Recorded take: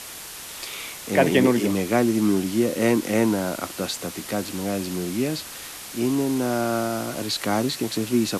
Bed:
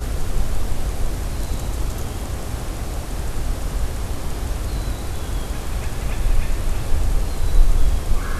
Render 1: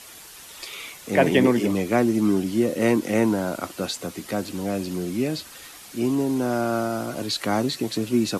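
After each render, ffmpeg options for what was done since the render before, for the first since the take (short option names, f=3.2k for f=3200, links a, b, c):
-af "afftdn=nr=8:nf=-38"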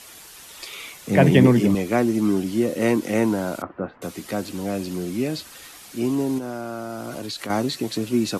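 -filter_complex "[0:a]asettb=1/sr,asplit=3[a][b][c];[a]atrim=end=1.074[d];[b]atrim=start=1.07:end=1.75,asetpts=PTS-STARTPTS,afade=t=in:d=0.004:c=qsin,afade=t=out:st=0.676:d=0.004:c=qsin,equalizer=f=140:t=o:w=0.96:g=14[e];[c]atrim=start=1.746[f];[d][e]acrossfade=d=0.004:c1=hsin:c2=qsin[g];[g][f]acrossfade=d=0.004:c1=qsin:c2=hsin,asettb=1/sr,asplit=3[h][i][j];[h]atrim=end=3.624[k];[i]atrim=start=3.62:end=4.02,asetpts=PTS-STARTPTS,afade=t=in:d=0.004:c=qsin,afade=t=out:st=0.396:d=0.004:c=qsin,lowpass=f=1.6k:w=0.5412,lowpass=f=1.6k:w=1.3066[l];[j]atrim=start=4.016[m];[k][l]acrossfade=d=0.004:c1=hsin:c2=qsin[n];[n][m]acrossfade=d=0.004:c1=qsin:c2=hsin,asettb=1/sr,asplit=3[o][p][q];[o]atrim=end=6.384[r];[p]atrim=start=6.38:end=7.5,asetpts=PTS-STARTPTS,afade=t=in:d=0.004:c=qsin,afade=t=out:st=1.116:d=0.004:c=qsin,acompressor=threshold=-27dB:ratio=6:attack=3.2:release=140:knee=1:detection=peak[s];[q]atrim=start=7.496[t];[r][s]acrossfade=d=0.004:c1=hsin:c2=qsin[u];[u][t]acrossfade=d=0.004:c1=qsin:c2=hsin"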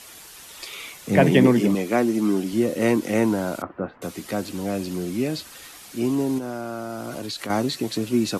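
-filter_complex "[0:a]asettb=1/sr,asplit=3[a][b][c];[a]atrim=end=1.204[d];[b]atrim=start=1.2:end=2.53,asetpts=PTS-STARTPTS,afade=t=in:d=0.004:c=qsin,afade=t=out:st=1.326:d=0.004:c=qsin,highpass=170[e];[c]atrim=start=2.526[f];[d][e]acrossfade=d=0.004:c1=hsin:c2=qsin[g];[g][f]acrossfade=d=0.004:c1=qsin:c2=hsin"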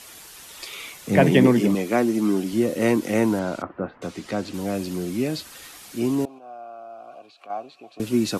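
-filter_complex "[0:a]asettb=1/sr,asplit=3[a][b][c];[a]atrim=end=3.394[d];[b]atrim=start=3.39:end=4.54,asetpts=PTS-STARTPTS,afade=t=in:d=0.004:c=qsin,afade=t=out:st=1.146:d=0.004:c=qsin,lowpass=6.3k[e];[c]atrim=start=4.536[f];[d][e]acrossfade=d=0.004:c1=hsin:c2=qsin[g];[g][f]acrossfade=d=0.004:c1=qsin:c2=hsin,asettb=1/sr,asplit=3[h][i][j];[h]atrim=end=6.254[k];[i]atrim=start=6.25:end=8,asetpts=PTS-STARTPTS,afade=t=in:d=0.004:c=qsin,afade=t=out:st=1.746:d=0.004:c=qsin,asplit=3[l][m][n];[l]bandpass=f=730:t=q:w=8,volume=0dB[o];[m]bandpass=f=1.09k:t=q:w=8,volume=-6dB[p];[n]bandpass=f=2.44k:t=q:w=8,volume=-9dB[q];[o][p][q]amix=inputs=3:normalize=0[r];[j]atrim=start=7.996[s];[k][r]acrossfade=d=0.004:c1=hsin:c2=qsin[t];[t][s]acrossfade=d=0.004:c1=qsin:c2=hsin"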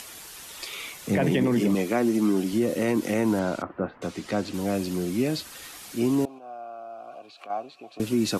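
-af "acompressor=mode=upward:threshold=-39dB:ratio=2.5,alimiter=limit=-14.5dB:level=0:latency=1:release=55"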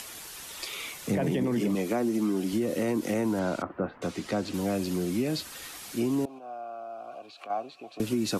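-filter_complex "[0:a]acrossover=split=280|1400|3500[a][b][c][d];[c]alimiter=level_in=7.5dB:limit=-24dB:level=0:latency=1:release=223,volume=-7.5dB[e];[a][b][e][d]amix=inputs=4:normalize=0,acompressor=threshold=-24dB:ratio=4"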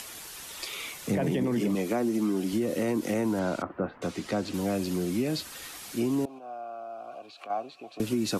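-af anull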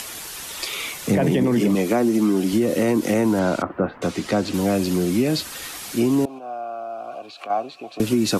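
-af "volume=8.5dB"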